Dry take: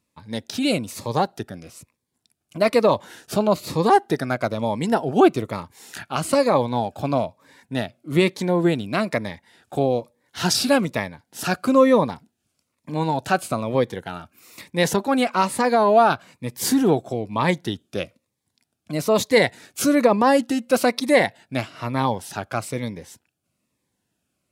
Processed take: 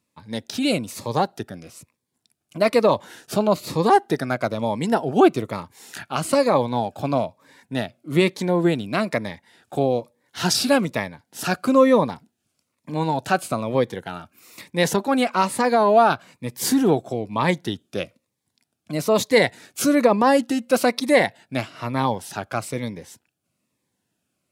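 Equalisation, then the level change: HPF 86 Hz; 0.0 dB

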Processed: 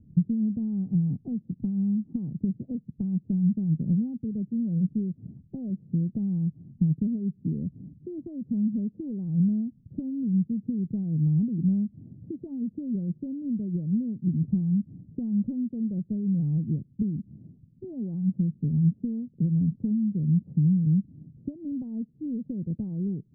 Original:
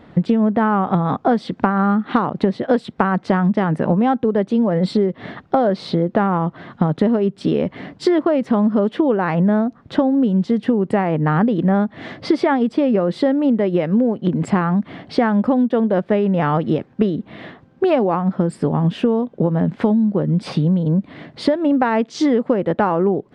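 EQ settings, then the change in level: ladder low-pass 210 Hz, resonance 20%; air absorption 440 m; +2.0 dB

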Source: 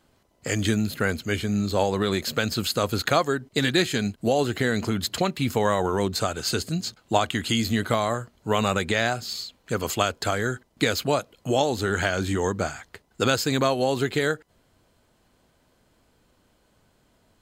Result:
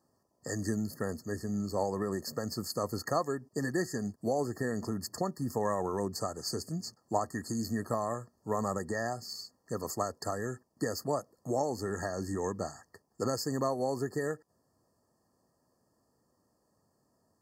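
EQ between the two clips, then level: HPF 99 Hz; Butterworth band-stop 1500 Hz, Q 4.5; brick-wall FIR band-stop 1900–4300 Hz; -8.5 dB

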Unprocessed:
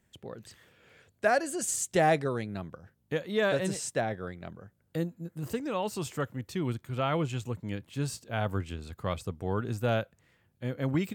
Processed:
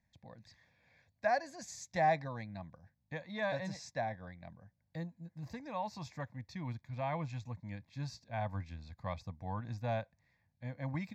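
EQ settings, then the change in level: LPF 6700 Hz 12 dB/oct; dynamic EQ 990 Hz, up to +4 dB, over -43 dBFS, Q 1.1; fixed phaser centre 2000 Hz, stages 8; -6.0 dB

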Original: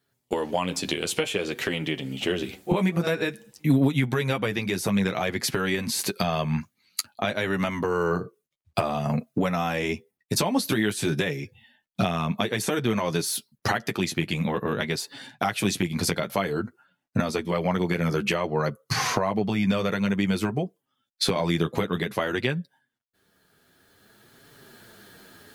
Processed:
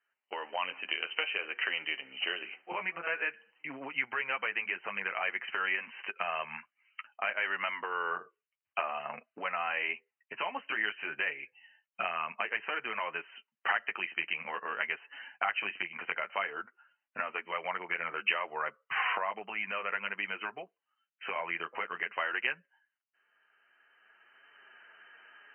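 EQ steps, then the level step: HPF 1200 Hz 12 dB/oct; brick-wall FIR low-pass 3100 Hz; 0.0 dB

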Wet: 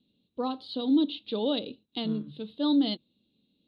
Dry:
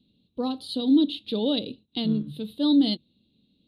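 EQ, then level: dynamic EQ 1200 Hz, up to +5 dB, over -45 dBFS, Q 1.1; air absorption 180 m; low shelf 210 Hz -12 dB; 0.0 dB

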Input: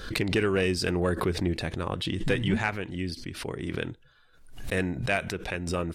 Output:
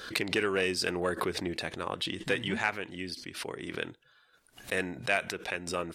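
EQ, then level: HPF 510 Hz 6 dB/oct; 0.0 dB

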